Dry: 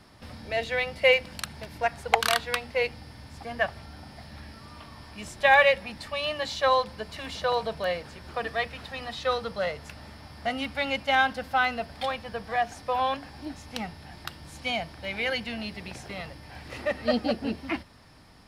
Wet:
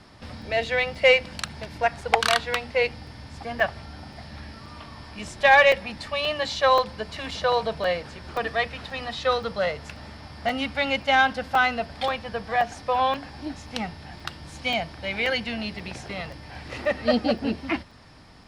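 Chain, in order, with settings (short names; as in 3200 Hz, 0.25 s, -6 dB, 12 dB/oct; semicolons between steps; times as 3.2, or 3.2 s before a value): LPF 8200 Hz 12 dB/oct; soft clip -9.5 dBFS, distortion -22 dB; crackling interface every 0.53 s, samples 128, zero, from 0.42; gain +4 dB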